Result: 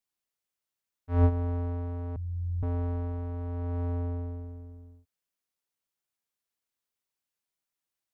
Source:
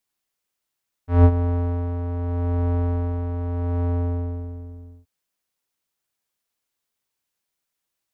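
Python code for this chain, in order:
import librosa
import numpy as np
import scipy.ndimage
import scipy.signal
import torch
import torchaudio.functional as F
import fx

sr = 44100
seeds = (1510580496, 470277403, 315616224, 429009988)

y = fx.cheby2_bandstop(x, sr, low_hz=430.0, high_hz=1500.0, order=4, stop_db=70, at=(2.16, 2.63))
y = y * librosa.db_to_amplitude(-8.0)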